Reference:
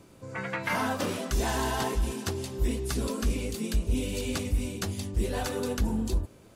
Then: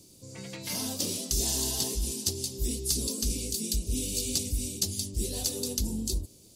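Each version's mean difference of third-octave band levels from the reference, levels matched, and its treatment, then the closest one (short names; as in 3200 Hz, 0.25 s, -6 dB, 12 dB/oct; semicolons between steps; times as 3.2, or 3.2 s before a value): 8.5 dB: EQ curve 360 Hz 0 dB, 1500 Hz -18 dB, 4700 Hz +14 dB; gain -4 dB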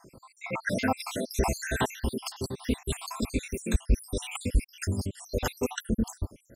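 13.5 dB: random spectral dropouts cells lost 75%; gain +5.5 dB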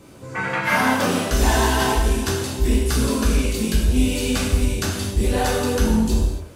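3.5 dB: non-linear reverb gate 0.31 s falling, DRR -4.5 dB; gain +5 dB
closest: third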